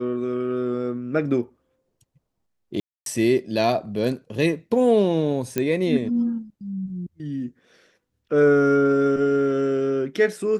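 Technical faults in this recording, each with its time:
2.80–3.06 s: dropout 262 ms
5.58 s: pop -9 dBFS

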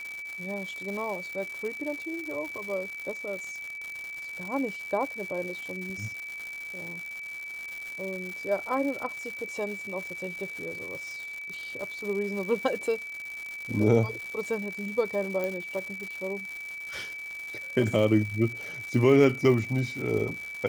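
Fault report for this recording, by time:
crackle 240 per s -34 dBFS
whine 2.3 kHz -36 dBFS
15.44 s: pop -18 dBFS

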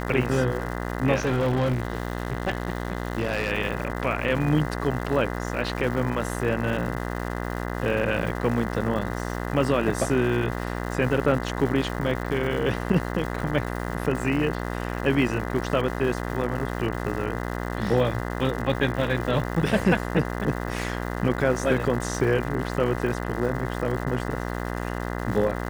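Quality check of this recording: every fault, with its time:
buzz 60 Hz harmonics 34 -30 dBFS
crackle 340 per s -33 dBFS
1.17–3.52 s: clipped -19.5 dBFS

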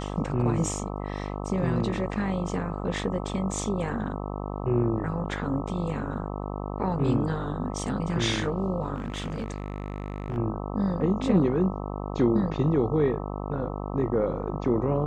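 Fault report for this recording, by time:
buzz 50 Hz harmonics 26 -33 dBFS
8.96–10.38 s: clipped -26.5 dBFS

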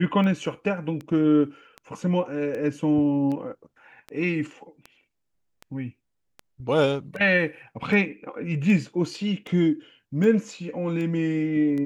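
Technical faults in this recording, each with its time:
tick 78 rpm -23 dBFS

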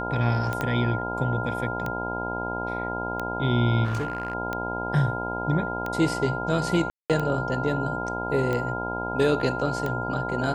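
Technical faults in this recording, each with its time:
buzz 60 Hz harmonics 17 -32 dBFS
tick 45 rpm -16 dBFS
whine 1.4 kHz -31 dBFS
0.61 s: pop -13 dBFS
3.84–4.35 s: clipped -23.5 dBFS
6.90–7.10 s: dropout 197 ms

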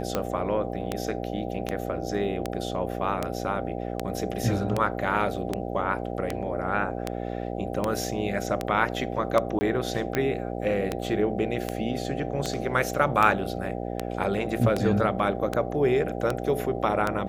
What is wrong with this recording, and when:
buzz 60 Hz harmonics 13 -32 dBFS
tick 78 rpm -11 dBFS
9.59–9.61 s: dropout 20 ms

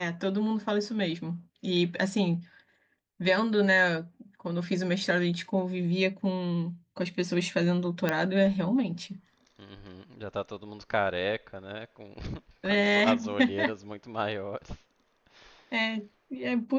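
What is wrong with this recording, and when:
8.09 s: pop -13 dBFS

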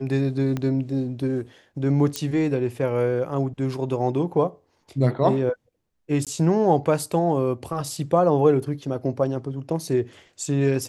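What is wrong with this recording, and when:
0.57 s: pop -15 dBFS
2.16 s: pop -11 dBFS
6.25–6.27 s: dropout 17 ms

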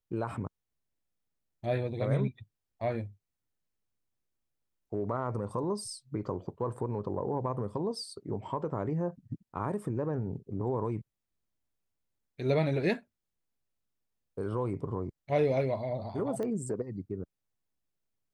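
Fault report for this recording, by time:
16.43 s: pop -25 dBFS

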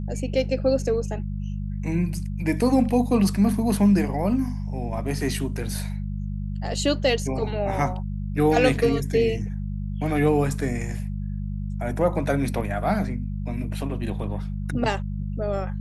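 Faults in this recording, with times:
hum 50 Hz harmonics 4 -29 dBFS

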